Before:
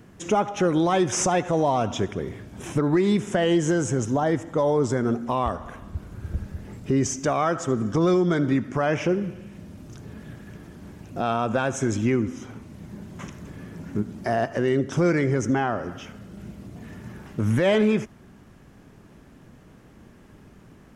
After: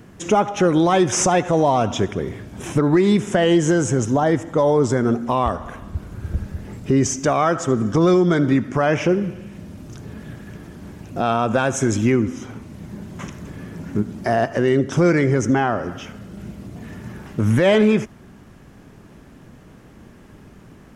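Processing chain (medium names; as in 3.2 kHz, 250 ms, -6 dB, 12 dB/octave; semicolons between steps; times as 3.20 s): 11.53–12.12 s: treble shelf 9 kHz +6.5 dB; trim +5 dB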